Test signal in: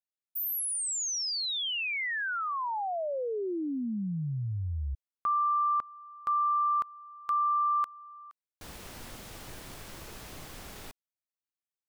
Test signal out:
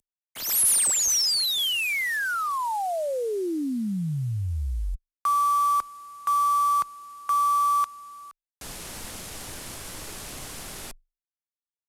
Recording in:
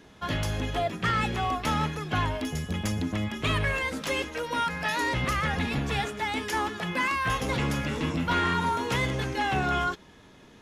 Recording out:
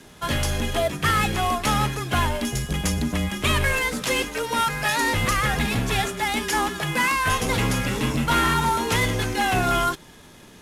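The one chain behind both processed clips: CVSD 64 kbps; high shelf 6500 Hz +9 dB; frequency shift -24 Hz; gain +5 dB

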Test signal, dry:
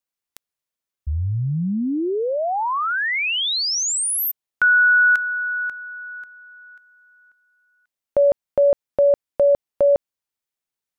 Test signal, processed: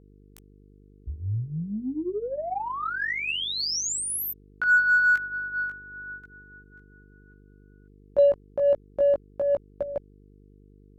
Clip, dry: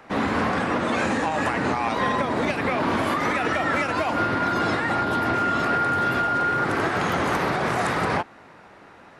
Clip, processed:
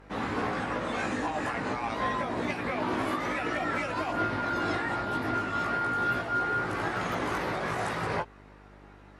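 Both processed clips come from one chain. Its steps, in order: chorus voices 4, 0.29 Hz, delay 18 ms, depth 1.9 ms; buzz 50 Hz, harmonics 9, -49 dBFS -4 dB/oct; added harmonics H 7 -38 dB, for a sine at -8 dBFS; gain -4 dB

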